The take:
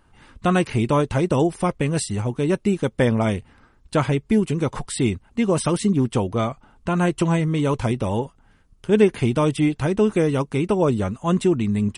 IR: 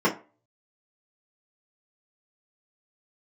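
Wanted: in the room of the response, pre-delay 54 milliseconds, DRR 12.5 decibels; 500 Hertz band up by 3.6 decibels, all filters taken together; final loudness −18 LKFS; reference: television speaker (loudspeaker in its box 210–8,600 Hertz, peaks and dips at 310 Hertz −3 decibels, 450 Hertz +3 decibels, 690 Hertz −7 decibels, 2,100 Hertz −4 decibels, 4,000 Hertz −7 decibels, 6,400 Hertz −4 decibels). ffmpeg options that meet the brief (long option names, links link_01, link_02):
-filter_complex "[0:a]equalizer=frequency=500:width_type=o:gain=4,asplit=2[link_01][link_02];[1:a]atrim=start_sample=2205,adelay=54[link_03];[link_02][link_03]afir=irnorm=-1:irlink=0,volume=-28.5dB[link_04];[link_01][link_04]amix=inputs=2:normalize=0,highpass=frequency=210:width=0.5412,highpass=frequency=210:width=1.3066,equalizer=frequency=310:width_type=q:width=4:gain=-3,equalizer=frequency=450:width_type=q:width=4:gain=3,equalizer=frequency=690:width_type=q:width=4:gain=-7,equalizer=frequency=2100:width_type=q:width=4:gain=-4,equalizer=frequency=4000:width_type=q:width=4:gain=-7,equalizer=frequency=6400:width_type=q:width=4:gain=-4,lowpass=frequency=8600:width=0.5412,lowpass=frequency=8600:width=1.3066,volume=2.5dB"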